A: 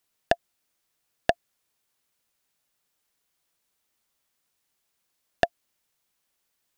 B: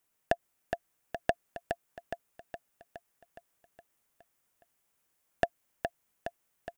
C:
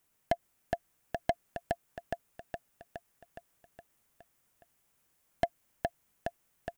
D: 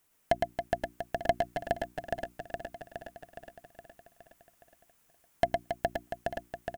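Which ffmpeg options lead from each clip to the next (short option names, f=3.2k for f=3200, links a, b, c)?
-filter_complex "[0:a]equalizer=f=4.2k:t=o:w=0.97:g=-8.5,alimiter=limit=-10.5dB:level=0:latency=1:release=61,asplit=2[a][b];[b]aecho=0:1:416|832|1248|1664|2080|2496|2912|3328:0.501|0.291|0.169|0.0978|0.0567|0.0329|0.0191|0.0111[c];[a][c]amix=inputs=2:normalize=0"
-af "asoftclip=type=tanh:threshold=-21.5dB,bass=f=250:g=5,treble=f=4k:g=0,volume=3dB"
-filter_complex "[0:a]bandreject=f=60:t=h:w=6,bandreject=f=120:t=h:w=6,bandreject=f=180:t=h:w=6,bandreject=f=240:t=h:w=6,bandreject=f=300:t=h:w=6,bandreject=f=360:t=h:w=6,asplit=2[a][b];[b]aecho=0:1:110|275|522.5|893.8|1451:0.631|0.398|0.251|0.158|0.1[c];[a][c]amix=inputs=2:normalize=0,volume=3dB"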